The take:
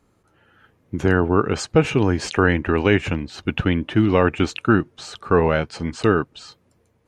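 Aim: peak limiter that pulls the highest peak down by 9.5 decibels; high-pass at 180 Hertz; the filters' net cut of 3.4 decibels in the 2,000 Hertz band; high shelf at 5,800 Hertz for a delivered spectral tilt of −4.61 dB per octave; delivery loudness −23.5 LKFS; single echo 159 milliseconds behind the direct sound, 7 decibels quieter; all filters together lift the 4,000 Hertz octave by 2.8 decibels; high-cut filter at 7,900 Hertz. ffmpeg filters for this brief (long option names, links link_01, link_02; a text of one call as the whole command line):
ffmpeg -i in.wav -af "highpass=180,lowpass=7900,equalizer=frequency=2000:width_type=o:gain=-6.5,equalizer=frequency=4000:width_type=o:gain=3.5,highshelf=frequency=5800:gain=8.5,alimiter=limit=-12dB:level=0:latency=1,aecho=1:1:159:0.447,volume=0.5dB" out.wav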